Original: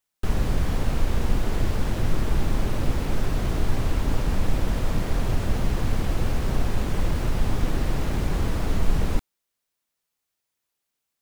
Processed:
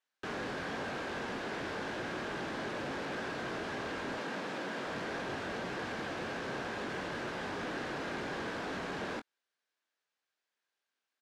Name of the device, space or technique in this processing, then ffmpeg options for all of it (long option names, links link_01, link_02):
intercom: -filter_complex "[0:a]highpass=320,lowpass=4700,equalizer=frequency=1600:width_type=o:width=0.21:gain=9,asoftclip=type=tanh:threshold=-30.5dB,asplit=2[link_01][link_02];[link_02]adelay=22,volume=-9dB[link_03];[link_01][link_03]amix=inputs=2:normalize=0,asettb=1/sr,asplit=3[link_04][link_05][link_06];[link_04]atrim=end=4.184[link_07];[link_05]atrim=start=4.18:end=4.87,asetpts=PTS-STARTPTS,afade=type=in:duration=0.004:curve=qsin,afade=type=out:start_time=0.686:duration=0.004:curve=qsin,highpass=frequency=140:width=0.5412,highpass=frequency=140:width=1.3066[link_08];[link_06]atrim=start=4.866[link_09];[link_07][link_08]acrossfade=duration=0.004:curve1=hsin:curve2=qsin[link_10];[link_10][link_09]acrossfade=duration=0.004:curve1=qsin:curve2=hsin,volume=-2.5dB"